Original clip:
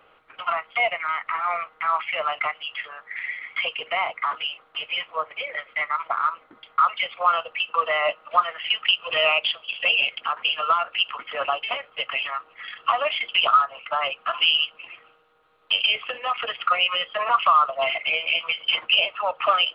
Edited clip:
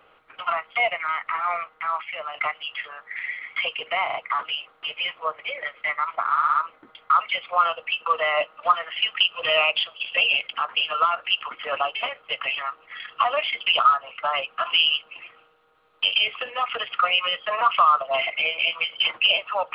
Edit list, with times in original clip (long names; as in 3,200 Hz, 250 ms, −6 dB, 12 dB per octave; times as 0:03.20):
0:01.47–0:02.34: fade out, to −9 dB
0:04.06: stutter 0.04 s, 3 plays
0:06.22: stutter 0.06 s, 5 plays